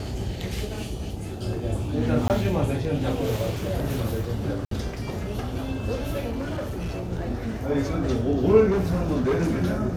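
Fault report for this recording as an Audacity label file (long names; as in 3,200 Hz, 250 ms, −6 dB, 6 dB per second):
2.280000	2.300000	drop-out 18 ms
4.650000	4.710000	drop-out 63 ms
6.290000	7.040000	clipping −26 dBFS
8.700000	9.600000	clipping −19 dBFS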